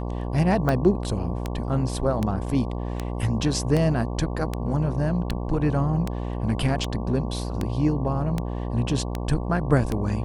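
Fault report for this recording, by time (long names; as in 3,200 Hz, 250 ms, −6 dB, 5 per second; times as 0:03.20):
mains buzz 60 Hz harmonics 19 −29 dBFS
scratch tick 78 rpm −12 dBFS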